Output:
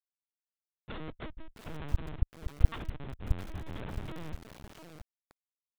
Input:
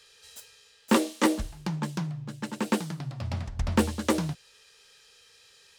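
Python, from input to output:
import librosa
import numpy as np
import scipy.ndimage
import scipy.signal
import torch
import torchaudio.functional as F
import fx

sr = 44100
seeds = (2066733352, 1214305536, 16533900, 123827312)

y = fx.hum_notches(x, sr, base_hz=60, count=2)
y = fx.ellip_bandstop(y, sr, low_hz=140.0, high_hz=1100.0, order=3, stop_db=40, at=(1.28, 3.42), fade=0.02)
y = fx.rotary_switch(y, sr, hz=0.9, then_hz=7.0, switch_at_s=2.56)
y = fx.schmitt(y, sr, flips_db=-36.0)
y = fx.lpc_vocoder(y, sr, seeds[0], excitation='pitch_kept', order=10)
y = fx.echo_crushed(y, sr, ms=666, feedback_pct=35, bits=6, wet_db=-7)
y = y * librosa.db_to_amplitude(-5.5)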